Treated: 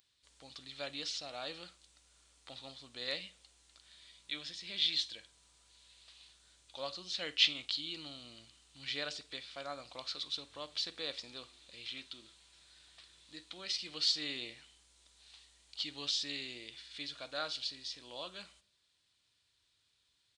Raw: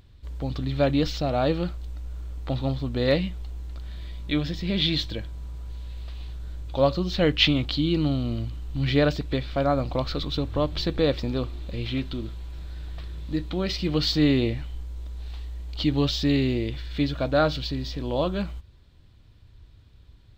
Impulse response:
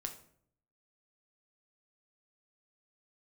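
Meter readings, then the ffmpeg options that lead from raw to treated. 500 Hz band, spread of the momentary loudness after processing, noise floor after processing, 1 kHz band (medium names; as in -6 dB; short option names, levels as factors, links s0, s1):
-22.5 dB, 21 LU, -77 dBFS, -17.5 dB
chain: -filter_complex "[0:a]asplit=2[s0][s1];[1:a]atrim=start_sample=2205,adelay=49[s2];[s1][s2]afir=irnorm=-1:irlink=0,volume=0.15[s3];[s0][s3]amix=inputs=2:normalize=0,aresample=22050,aresample=44100,aderivative"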